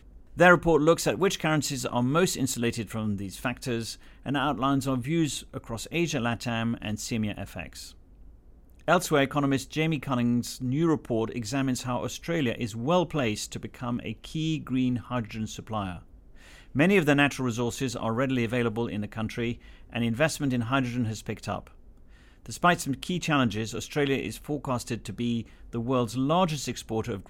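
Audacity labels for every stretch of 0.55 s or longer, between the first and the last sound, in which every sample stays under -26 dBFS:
7.610000	8.880000	silence
15.910000	16.760000	silence
21.580000	22.540000	silence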